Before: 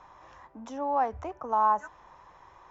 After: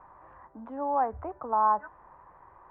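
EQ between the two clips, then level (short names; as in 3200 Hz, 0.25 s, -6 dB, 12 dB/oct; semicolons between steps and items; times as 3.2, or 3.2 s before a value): LPF 1700 Hz 24 dB/oct; 0.0 dB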